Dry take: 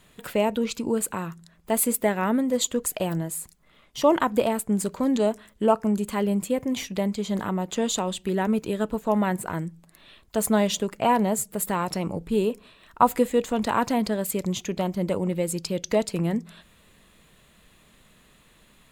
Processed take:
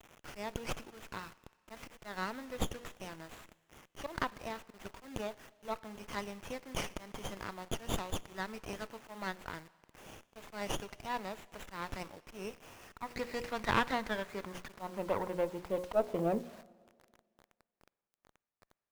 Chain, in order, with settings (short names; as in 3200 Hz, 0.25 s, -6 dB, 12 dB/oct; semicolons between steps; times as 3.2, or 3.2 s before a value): notches 60/120/180/240/300/360/420/480/540 Hz; treble ducked by the level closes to 2700 Hz, closed at -18.5 dBFS; high shelf 7600 Hz -3 dB; auto swell 0.148 s; band-pass sweep 3400 Hz -> 590 Hz, 12.61–16.43; bit-crush 10-bit; Schroeder reverb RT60 1.8 s, DRR 19.5 dB; running maximum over 9 samples; gain +5.5 dB